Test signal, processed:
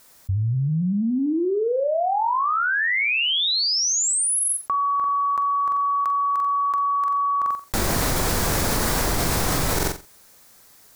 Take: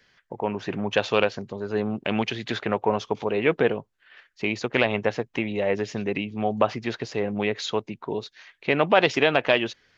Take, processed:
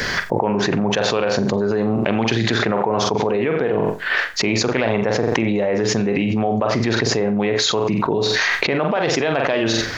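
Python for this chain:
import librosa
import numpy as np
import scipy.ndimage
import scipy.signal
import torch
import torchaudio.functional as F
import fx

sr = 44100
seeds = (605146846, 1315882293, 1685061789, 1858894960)

p1 = fx.peak_eq(x, sr, hz=2900.0, db=-7.5, octaves=0.77)
p2 = fx.rider(p1, sr, range_db=4, speed_s=0.5)
p3 = p2 + fx.room_flutter(p2, sr, wall_m=7.6, rt60_s=0.29, dry=0)
p4 = fx.env_flatten(p3, sr, amount_pct=100)
y = p4 * librosa.db_to_amplitude(-2.5)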